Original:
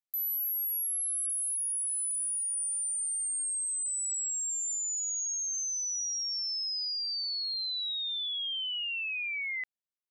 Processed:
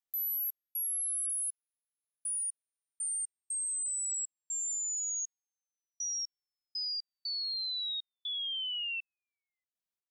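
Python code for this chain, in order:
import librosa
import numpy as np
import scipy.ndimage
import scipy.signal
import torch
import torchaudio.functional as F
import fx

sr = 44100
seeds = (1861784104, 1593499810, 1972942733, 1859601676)

y = fx.step_gate(x, sr, bpm=60, pattern='xx.xxx...x..x.x', floor_db=-60.0, edge_ms=4.5)
y = F.gain(torch.from_numpy(y), -1.5).numpy()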